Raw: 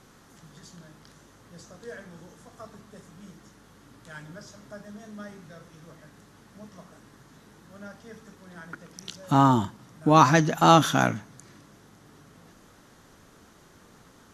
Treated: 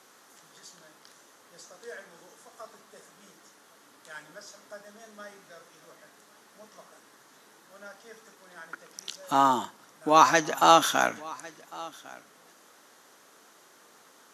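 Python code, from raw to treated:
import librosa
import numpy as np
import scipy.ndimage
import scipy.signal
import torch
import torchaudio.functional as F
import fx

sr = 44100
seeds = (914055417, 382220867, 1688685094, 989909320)

y = scipy.signal.sosfilt(scipy.signal.butter(2, 450.0, 'highpass', fs=sr, output='sos'), x)
y = fx.high_shelf(y, sr, hz=7000.0, db=5.0)
y = y + 10.0 ** (-21.5 / 20.0) * np.pad(y, (int(1102 * sr / 1000.0), 0))[:len(y)]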